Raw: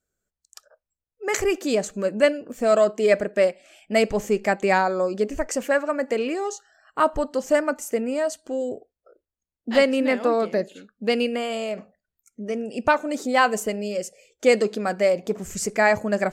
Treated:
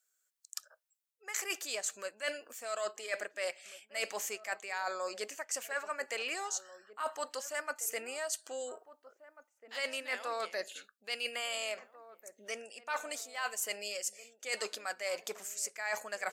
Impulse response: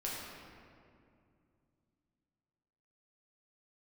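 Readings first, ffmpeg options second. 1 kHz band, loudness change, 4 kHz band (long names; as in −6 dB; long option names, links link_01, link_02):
−15.5 dB, −15.0 dB, −6.0 dB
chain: -filter_complex "[0:a]highpass=1100,highshelf=frequency=4900:gain=8,areverse,acompressor=threshold=-33dB:ratio=16,areverse,asplit=2[link_01][link_02];[link_02]adelay=1691,volume=-15dB,highshelf=frequency=4000:gain=-38[link_03];[link_01][link_03]amix=inputs=2:normalize=0"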